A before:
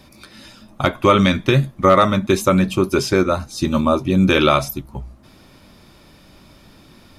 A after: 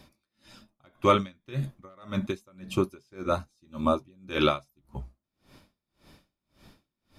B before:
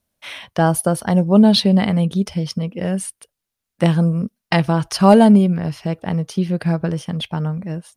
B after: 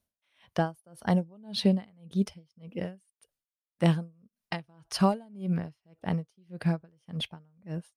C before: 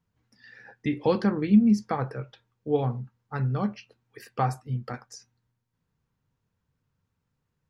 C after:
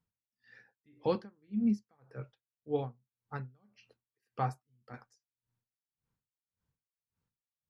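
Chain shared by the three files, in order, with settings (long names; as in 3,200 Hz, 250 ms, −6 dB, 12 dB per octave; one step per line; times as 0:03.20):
tremolo with a sine in dB 1.8 Hz, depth 36 dB
level −6.5 dB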